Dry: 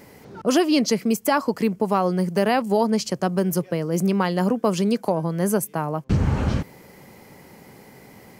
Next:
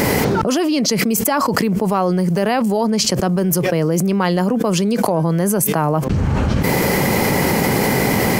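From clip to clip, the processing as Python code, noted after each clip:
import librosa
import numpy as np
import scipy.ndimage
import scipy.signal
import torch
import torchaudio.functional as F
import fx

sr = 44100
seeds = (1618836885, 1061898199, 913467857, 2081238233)

y = fx.env_flatten(x, sr, amount_pct=100)
y = y * librosa.db_to_amplitude(-1.5)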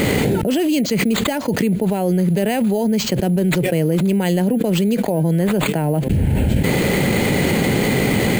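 y = fx.fixed_phaser(x, sr, hz=2800.0, stages=4)
y = np.repeat(y[::4], 4)[:len(y)]
y = fx.end_taper(y, sr, db_per_s=180.0)
y = y * librosa.db_to_amplitude(1.0)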